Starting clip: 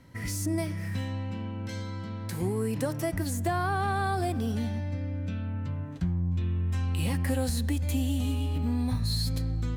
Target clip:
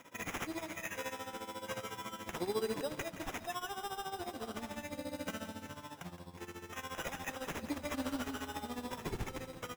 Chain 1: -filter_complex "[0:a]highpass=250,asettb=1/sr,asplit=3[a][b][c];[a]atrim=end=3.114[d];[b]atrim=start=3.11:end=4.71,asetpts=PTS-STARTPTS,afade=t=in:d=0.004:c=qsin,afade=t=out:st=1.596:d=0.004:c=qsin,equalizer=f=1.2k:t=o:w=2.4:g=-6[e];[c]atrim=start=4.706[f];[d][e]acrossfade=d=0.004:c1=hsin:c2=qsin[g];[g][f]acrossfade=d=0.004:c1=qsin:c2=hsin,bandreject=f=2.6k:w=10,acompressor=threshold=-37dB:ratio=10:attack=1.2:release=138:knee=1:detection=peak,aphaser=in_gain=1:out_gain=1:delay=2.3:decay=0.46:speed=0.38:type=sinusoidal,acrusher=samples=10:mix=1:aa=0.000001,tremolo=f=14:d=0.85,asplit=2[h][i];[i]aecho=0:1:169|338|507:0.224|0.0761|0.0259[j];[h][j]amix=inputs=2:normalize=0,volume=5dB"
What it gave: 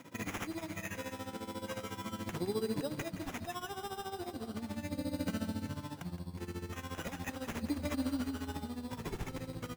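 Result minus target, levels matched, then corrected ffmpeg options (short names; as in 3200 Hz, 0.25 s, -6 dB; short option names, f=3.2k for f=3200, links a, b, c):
250 Hz band +3.5 dB
-filter_complex "[0:a]highpass=510,asettb=1/sr,asplit=3[a][b][c];[a]atrim=end=3.114[d];[b]atrim=start=3.11:end=4.71,asetpts=PTS-STARTPTS,afade=t=in:d=0.004:c=qsin,afade=t=out:st=1.596:d=0.004:c=qsin,equalizer=f=1.2k:t=o:w=2.4:g=-6[e];[c]atrim=start=4.706[f];[d][e]acrossfade=d=0.004:c1=hsin:c2=qsin[g];[g][f]acrossfade=d=0.004:c1=qsin:c2=hsin,bandreject=f=2.6k:w=10,acompressor=threshold=-37dB:ratio=10:attack=1.2:release=138:knee=1:detection=peak,aphaser=in_gain=1:out_gain=1:delay=2.3:decay=0.46:speed=0.38:type=sinusoidal,acrusher=samples=10:mix=1:aa=0.000001,tremolo=f=14:d=0.85,asplit=2[h][i];[i]aecho=0:1:169|338|507:0.224|0.0761|0.0259[j];[h][j]amix=inputs=2:normalize=0,volume=5dB"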